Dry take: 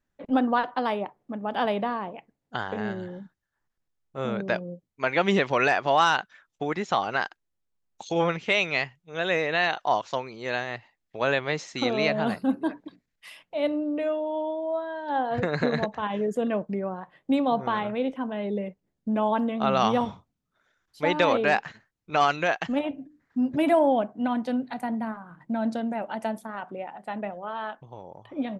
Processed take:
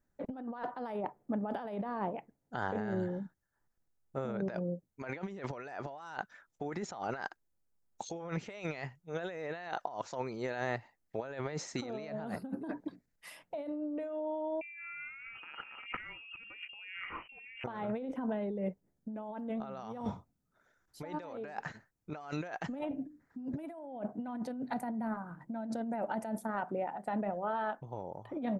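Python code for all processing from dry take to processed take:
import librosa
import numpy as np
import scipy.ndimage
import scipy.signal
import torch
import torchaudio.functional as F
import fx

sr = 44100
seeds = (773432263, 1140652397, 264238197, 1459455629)

y = fx.chain(x, sr, fx.freq_invert(carrier_hz=3000),
    fx.env_flatten(amount_pct=50), at=(14.61, 17.64))
y = fx.over_compress(y, sr, threshold_db=-33.0, ratio=-1.0)
y = fx.peak_eq(y, sr, hz=3100.0, db=-11.0, octaves=1.3)
y = fx.notch(y, sr, hz=1100.0, q=13.0)
y = y * 10.0 ** (-5.0 / 20.0)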